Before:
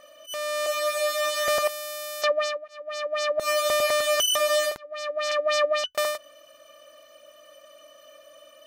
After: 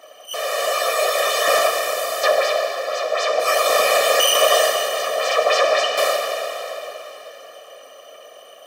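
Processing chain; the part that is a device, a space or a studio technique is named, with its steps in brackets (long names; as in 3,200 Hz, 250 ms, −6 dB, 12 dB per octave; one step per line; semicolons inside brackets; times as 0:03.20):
whispering ghost (random phases in short frames; high-pass filter 260 Hz 12 dB per octave; convolution reverb RT60 3.9 s, pre-delay 11 ms, DRR 0.5 dB)
level +4.5 dB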